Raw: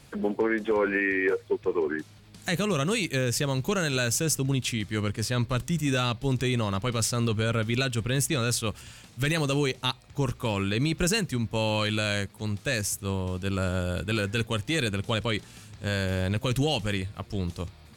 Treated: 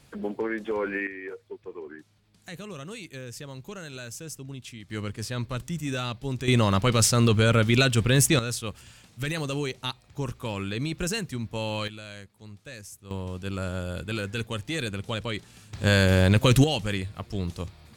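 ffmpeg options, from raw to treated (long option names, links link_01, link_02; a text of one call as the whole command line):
ffmpeg -i in.wav -af "asetnsamples=nb_out_samples=441:pad=0,asendcmd='1.07 volume volume -13dB;4.9 volume volume -4.5dB;6.48 volume volume 6dB;8.39 volume volume -4dB;11.88 volume volume -14.5dB;13.11 volume volume -3.5dB;15.73 volume volume 8dB;16.64 volume volume 0dB',volume=-4dB" out.wav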